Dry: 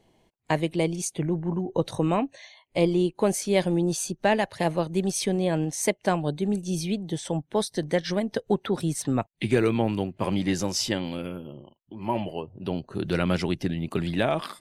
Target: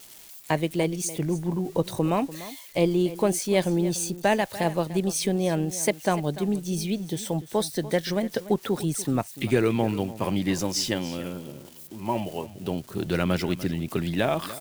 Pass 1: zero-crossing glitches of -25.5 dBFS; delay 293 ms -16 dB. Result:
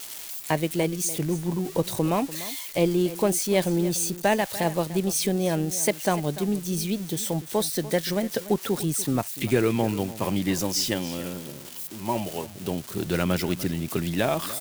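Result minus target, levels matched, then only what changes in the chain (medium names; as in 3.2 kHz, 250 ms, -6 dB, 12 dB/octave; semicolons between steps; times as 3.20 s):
zero-crossing glitches: distortion +9 dB
change: zero-crossing glitches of -35 dBFS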